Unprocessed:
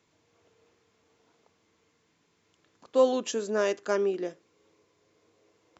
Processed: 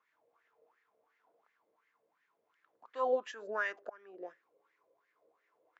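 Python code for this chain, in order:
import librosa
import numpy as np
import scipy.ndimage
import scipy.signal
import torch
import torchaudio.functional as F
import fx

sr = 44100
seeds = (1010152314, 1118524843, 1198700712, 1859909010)

y = fx.auto_swell(x, sr, attack_ms=556.0, at=(3.33, 4.27), fade=0.02)
y = fx.wah_lfo(y, sr, hz=2.8, low_hz=540.0, high_hz=1900.0, q=6.2)
y = y * 10.0 ** (5.5 / 20.0)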